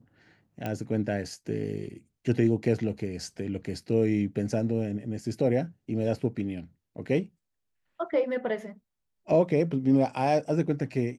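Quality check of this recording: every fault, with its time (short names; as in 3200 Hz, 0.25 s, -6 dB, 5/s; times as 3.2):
0.66 pop -19 dBFS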